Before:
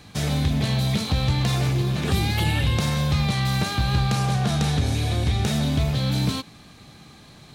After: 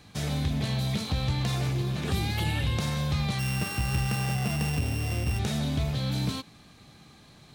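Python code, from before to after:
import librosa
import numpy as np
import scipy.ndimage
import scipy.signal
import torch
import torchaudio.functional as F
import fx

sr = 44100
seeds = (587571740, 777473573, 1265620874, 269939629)

y = fx.sample_sort(x, sr, block=16, at=(3.38, 5.38), fade=0.02)
y = y * librosa.db_to_amplitude(-6.0)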